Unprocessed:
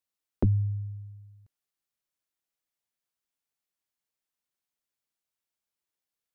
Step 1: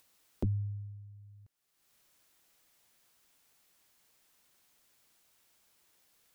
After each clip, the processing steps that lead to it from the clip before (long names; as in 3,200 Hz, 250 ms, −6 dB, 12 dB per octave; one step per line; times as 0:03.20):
upward compression, threshold −39 dBFS
level −8 dB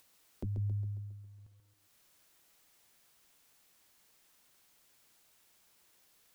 brickwall limiter −34 dBFS, peak gain reduction 9.5 dB
feedback echo at a low word length 136 ms, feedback 55%, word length 12 bits, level −7 dB
level +1.5 dB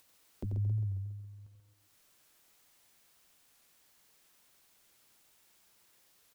single-tap delay 89 ms −6.5 dB
wow of a warped record 45 rpm, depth 100 cents